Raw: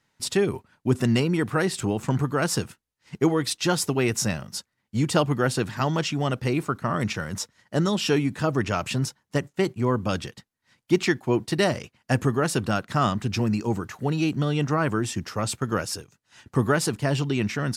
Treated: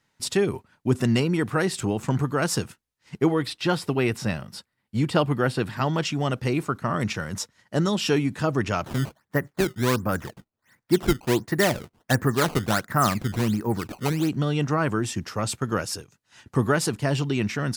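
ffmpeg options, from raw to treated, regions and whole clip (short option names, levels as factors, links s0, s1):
-filter_complex "[0:a]asettb=1/sr,asplit=3[s0][s1][s2];[s0]atrim=end=3.174[s3];[s1]atrim=start=3.17:end=6.05,asetpts=PTS-STARTPTS,afade=t=in:d=0.004:c=qsin,afade=t=out:st=2.876:d=0.004:c=qsin,acrossover=split=4700[s4][s5];[s5]acompressor=threshold=0.0112:ratio=4:attack=1:release=60[s6];[s4][s6]amix=inputs=2:normalize=0,equalizer=f=6400:t=o:w=0.36:g=-8.5[s7];[s2]atrim=start=6.046[s8];[s3][s7]acrossfade=d=0.004:c1=hsin:c2=qsin[s9];[s9][s8]acrossfade=d=0.004:c1=qsin:c2=hsin,asettb=1/sr,asplit=3[s10][s11][s12];[s10]atrim=end=8.844[s13];[s11]atrim=start=8.84:end=14.29,asetpts=PTS-STARTPTS,afade=t=in:d=0.004:c=qsin,afade=t=out:st=5.446:d=0.004:c=qsin,highshelf=f=2300:t=q:w=3:g=-7,acrusher=samples=15:mix=1:aa=0.000001:lfo=1:lforange=24:lforate=1.4[s14];[s12]atrim=start=14.286[s15];[s13][s14]acrossfade=d=0.004:c1=hsin:c2=qsin[s16];[s16][s15]acrossfade=d=0.004:c1=qsin:c2=hsin"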